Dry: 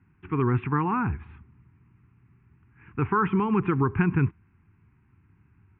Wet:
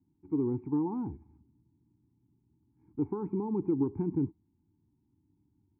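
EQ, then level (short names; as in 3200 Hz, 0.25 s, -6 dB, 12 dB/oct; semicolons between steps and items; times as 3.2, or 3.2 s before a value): dynamic EQ 500 Hz, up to +7 dB, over -42 dBFS, Q 1.5; vocal tract filter u; high shelf 2400 Hz +8 dB; 0.0 dB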